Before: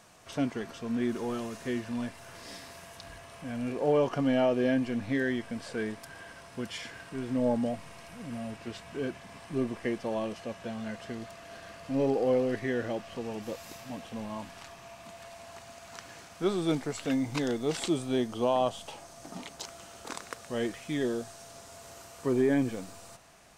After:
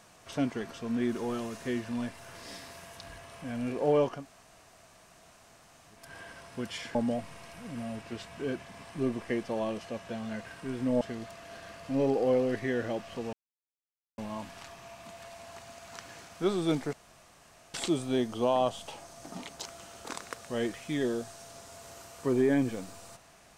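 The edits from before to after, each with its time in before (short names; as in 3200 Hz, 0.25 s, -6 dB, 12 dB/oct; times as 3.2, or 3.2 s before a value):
4.14–6.02 room tone, crossfade 0.24 s
6.95–7.5 move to 11.01
13.33–14.18 mute
16.93–17.74 room tone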